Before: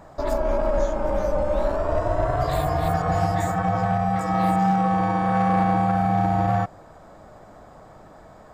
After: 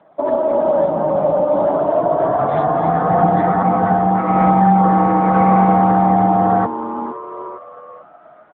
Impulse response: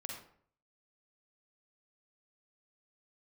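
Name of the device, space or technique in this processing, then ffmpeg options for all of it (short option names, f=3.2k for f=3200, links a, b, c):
mobile call with aggressive noise cancelling: -filter_complex "[0:a]asplit=3[a][b][c];[a]afade=t=out:st=3.12:d=0.02[d];[b]equalizer=f=280:w=0.4:g=3.5,afade=t=in:st=3.12:d=0.02,afade=t=out:st=3.54:d=0.02[e];[c]afade=t=in:st=3.54:d=0.02[f];[d][e][f]amix=inputs=3:normalize=0,asplit=7[g][h][i][j][k][l][m];[h]adelay=458,afreqshift=130,volume=-12dB[n];[i]adelay=916,afreqshift=260,volume=-17dB[o];[j]adelay=1374,afreqshift=390,volume=-22.1dB[p];[k]adelay=1832,afreqshift=520,volume=-27.1dB[q];[l]adelay=2290,afreqshift=650,volume=-32.1dB[r];[m]adelay=2748,afreqshift=780,volume=-37.2dB[s];[g][n][o][p][q][r][s]amix=inputs=7:normalize=0,highpass=f=160:w=0.5412,highpass=f=160:w=1.3066,afftdn=nr=13:nf=-31,volume=8.5dB" -ar 8000 -c:a libopencore_amrnb -b:a 10200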